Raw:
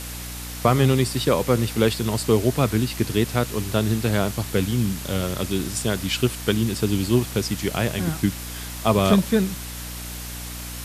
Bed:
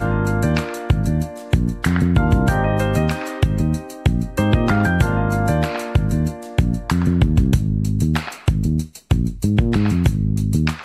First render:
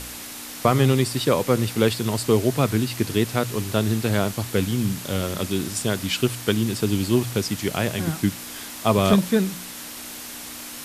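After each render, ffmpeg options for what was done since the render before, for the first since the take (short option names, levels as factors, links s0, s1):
-af "bandreject=f=60:t=h:w=4,bandreject=f=120:t=h:w=4,bandreject=f=180:t=h:w=4"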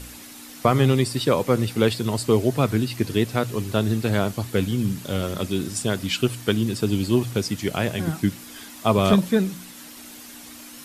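-af "afftdn=nr=8:nf=-37"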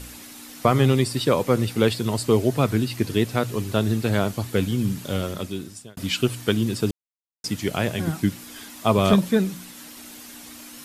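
-filter_complex "[0:a]asplit=4[s0][s1][s2][s3];[s0]atrim=end=5.97,asetpts=PTS-STARTPTS,afade=t=out:st=5.14:d=0.83[s4];[s1]atrim=start=5.97:end=6.91,asetpts=PTS-STARTPTS,afade=t=in:d=0.004:c=hsin,afade=t=out:st=0.936:d=0.004:c=hsin[s5];[s2]atrim=start=6.91:end=7.44,asetpts=PTS-STARTPTS,volume=0[s6];[s3]atrim=start=7.44,asetpts=PTS-STARTPTS,afade=t=in:d=0.004:c=hsin[s7];[s4][s5][s6][s7]concat=n=4:v=0:a=1"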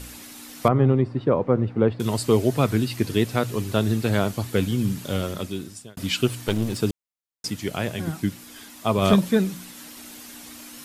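-filter_complex "[0:a]asettb=1/sr,asplit=3[s0][s1][s2];[s0]atrim=end=0.684[s3];[s1]atrim=start=0.68:end=2,asetpts=PTS-STARTPTS,afade=t=in:d=0.004:c=qsin,afade=t=out:st=1.316:d=0.004:c=qsin,lowpass=1100[s4];[s2]atrim=start=1.996[s5];[s3][s4]acrossfade=d=0.004:c1=hsin:c2=qsin[s6];[s6][s5]acrossfade=d=0.004:c1=qsin:c2=hsin,asettb=1/sr,asplit=3[s7][s8][s9];[s7]atrim=end=6.314[s10];[s8]atrim=start=6.31:end=6.78,asetpts=PTS-STARTPTS,afade=t=in:d=0.004:c=qsin,afade=t=out:st=0.466:d=0.004:c=qsin,aeval=exprs='clip(val(0),-1,0.0398)':c=same[s11];[s9]atrim=start=6.776[s12];[s10][s11]acrossfade=d=0.004:c1=hsin:c2=qsin[s13];[s13][s12]acrossfade=d=0.004:c1=qsin:c2=hsin,asplit=3[s14][s15][s16];[s14]atrim=end=7.502[s17];[s15]atrim=start=7.498:end=9.022,asetpts=PTS-STARTPTS,volume=0.708[s18];[s16]atrim=start=9.018[s19];[s17][s18]acrossfade=d=0.004:c1=hsin:c2=hsin[s20];[s20][s19]acrossfade=d=0.004:c1=hsin:c2=hsin"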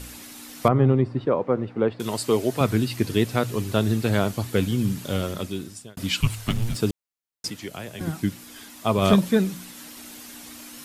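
-filter_complex "[0:a]asettb=1/sr,asplit=3[s0][s1][s2];[s0]atrim=end=1.254[s3];[s1]atrim=start=1.25:end=2.61,asetpts=PTS-STARTPTS,afade=t=in:d=0.004:c=qsin,afade=t=out:st=1.356:d=0.004:c=qsin,highpass=f=290:p=1[s4];[s2]atrim=start=2.606[s5];[s3][s4]acrossfade=d=0.004:c1=hsin:c2=qsin[s6];[s6][s5]acrossfade=d=0.004:c1=qsin:c2=hsin,asettb=1/sr,asplit=3[s7][s8][s9];[s7]atrim=end=6.204[s10];[s8]atrim=start=6.2:end=6.75,asetpts=PTS-STARTPTS,afade=t=in:d=0.004:c=qsin,afade=t=out:st=0.546:d=0.004:c=qsin,afreqshift=-230[s11];[s9]atrim=start=6.746[s12];[s10][s11]acrossfade=d=0.004:c1=hsin:c2=qsin[s13];[s13][s12]acrossfade=d=0.004:c1=qsin:c2=hsin,asettb=1/sr,asplit=3[s14][s15][s16];[s14]atrim=end=7.484[s17];[s15]atrim=start=7.48:end=8.01,asetpts=PTS-STARTPTS,afade=t=in:d=0.004:c=qsin,afade=t=out:st=0.526:d=0.004:c=qsin,acrossover=split=290|4800[s18][s19][s20];[s18]acompressor=threshold=0.01:ratio=4[s21];[s19]acompressor=threshold=0.0178:ratio=4[s22];[s20]acompressor=threshold=0.00398:ratio=4[s23];[s21][s22][s23]amix=inputs=3:normalize=0[s24];[s16]atrim=start=8.006[s25];[s17][s24]acrossfade=d=0.004:c1=hsin:c2=qsin[s26];[s26][s25]acrossfade=d=0.004:c1=qsin:c2=hsin"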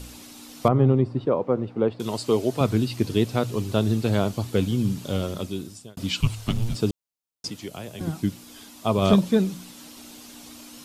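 -filter_complex "[0:a]acrossover=split=7200[s0][s1];[s1]acompressor=threshold=0.00355:ratio=4:attack=1:release=60[s2];[s0][s2]amix=inputs=2:normalize=0,equalizer=f=1800:w=1.6:g=-7.5"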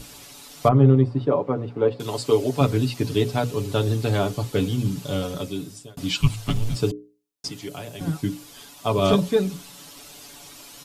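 -af "bandreject=f=60:t=h:w=6,bandreject=f=120:t=h:w=6,bandreject=f=180:t=h:w=6,bandreject=f=240:t=h:w=6,bandreject=f=300:t=h:w=6,bandreject=f=360:t=h:w=6,bandreject=f=420:t=h:w=6,bandreject=f=480:t=h:w=6,bandreject=f=540:t=h:w=6,aecho=1:1:7:0.75"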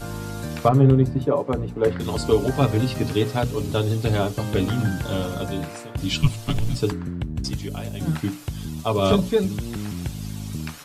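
-filter_complex "[1:a]volume=0.224[s0];[0:a][s0]amix=inputs=2:normalize=0"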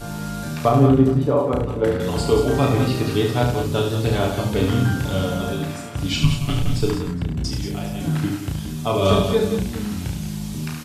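-filter_complex "[0:a]asplit=2[s0][s1];[s1]adelay=33,volume=0.631[s2];[s0][s2]amix=inputs=2:normalize=0,asplit=2[s3][s4];[s4]aecho=0:1:72|174|196|415:0.501|0.355|0.237|0.112[s5];[s3][s5]amix=inputs=2:normalize=0"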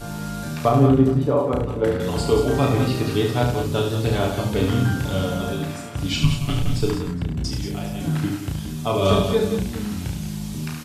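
-af "volume=0.891"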